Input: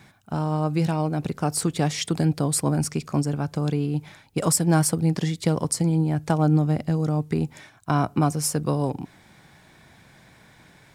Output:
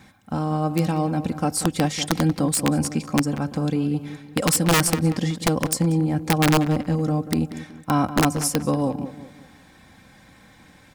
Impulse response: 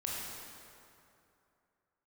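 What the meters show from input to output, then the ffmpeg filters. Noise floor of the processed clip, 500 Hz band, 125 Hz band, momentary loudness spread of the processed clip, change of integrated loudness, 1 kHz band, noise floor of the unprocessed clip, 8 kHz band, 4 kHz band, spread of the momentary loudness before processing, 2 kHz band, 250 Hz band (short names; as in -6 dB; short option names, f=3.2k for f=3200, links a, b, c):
-52 dBFS, +1.5 dB, -1.0 dB, 8 LU, +1.5 dB, +3.0 dB, -54 dBFS, +1.5 dB, +5.5 dB, 8 LU, +7.5 dB, +2.5 dB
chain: -filter_complex "[0:a]equalizer=f=100:t=o:w=2:g=5,aecho=1:1:3.8:0.56,aeval=exprs='(mod(3.55*val(0)+1,2)-1)/3.55':c=same,asplit=2[a][b];[b]adelay=187,lowpass=f=2.8k:p=1,volume=-12.5dB,asplit=2[c][d];[d]adelay=187,lowpass=f=2.8k:p=1,volume=0.4,asplit=2[e][f];[f]adelay=187,lowpass=f=2.8k:p=1,volume=0.4,asplit=2[g][h];[h]adelay=187,lowpass=f=2.8k:p=1,volume=0.4[i];[c][e][g][i]amix=inputs=4:normalize=0[j];[a][j]amix=inputs=2:normalize=0"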